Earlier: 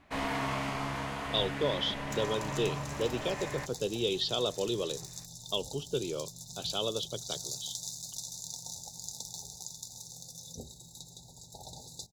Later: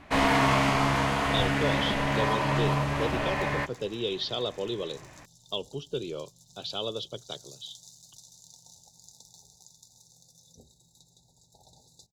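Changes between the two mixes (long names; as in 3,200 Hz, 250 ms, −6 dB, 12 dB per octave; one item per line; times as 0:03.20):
first sound +10.5 dB
second sound −10.5 dB
master: add high-shelf EQ 11,000 Hz −4.5 dB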